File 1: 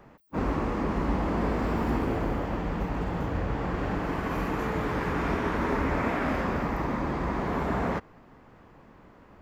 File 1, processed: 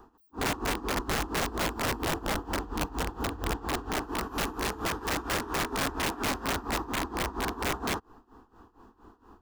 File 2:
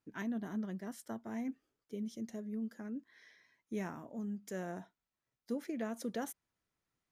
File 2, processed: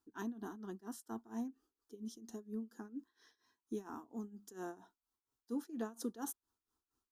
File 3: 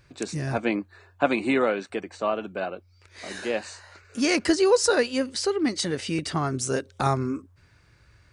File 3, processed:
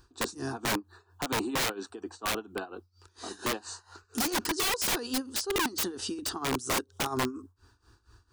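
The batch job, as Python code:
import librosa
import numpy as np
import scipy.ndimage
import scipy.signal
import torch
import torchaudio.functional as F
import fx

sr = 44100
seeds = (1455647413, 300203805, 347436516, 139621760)

y = x * (1.0 - 0.86 / 2.0 + 0.86 / 2.0 * np.cos(2.0 * np.pi * 4.3 * (np.arange(len(x)) / sr)))
y = fx.fixed_phaser(y, sr, hz=580.0, stages=6)
y = (np.mod(10.0 ** (27.0 / 20.0) * y + 1.0, 2.0) - 1.0) / 10.0 ** (27.0 / 20.0)
y = F.gain(torch.from_numpy(y), 4.0).numpy()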